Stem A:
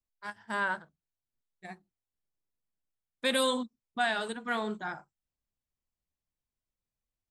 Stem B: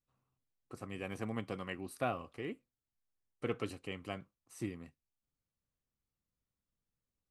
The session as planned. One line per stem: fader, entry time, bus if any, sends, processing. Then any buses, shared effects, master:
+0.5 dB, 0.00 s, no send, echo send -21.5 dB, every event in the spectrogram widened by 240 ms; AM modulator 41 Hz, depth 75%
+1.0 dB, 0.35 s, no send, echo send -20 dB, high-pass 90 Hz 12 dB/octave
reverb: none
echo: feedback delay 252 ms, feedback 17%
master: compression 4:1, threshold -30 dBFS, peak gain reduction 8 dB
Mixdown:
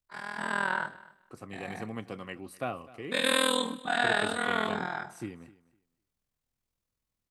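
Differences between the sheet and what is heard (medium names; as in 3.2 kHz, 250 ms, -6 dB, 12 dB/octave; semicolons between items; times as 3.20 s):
stem B: entry 0.35 s -> 0.60 s; master: missing compression 4:1, threshold -30 dBFS, peak gain reduction 8 dB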